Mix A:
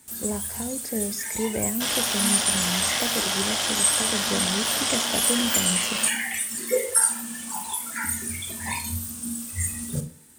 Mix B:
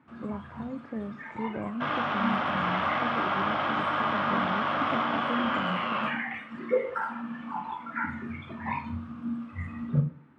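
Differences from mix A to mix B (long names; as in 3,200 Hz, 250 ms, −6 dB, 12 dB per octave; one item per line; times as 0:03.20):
speech −6.0 dB
second sound: send +8.5 dB
master: add loudspeaker in its box 120–2,100 Hz, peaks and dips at 140 Hz +9 dB, 290 Hz +5 dB, 430 Hz −5 dB, 1,200 Hz +9 dB, 1,800 Hz −5 dB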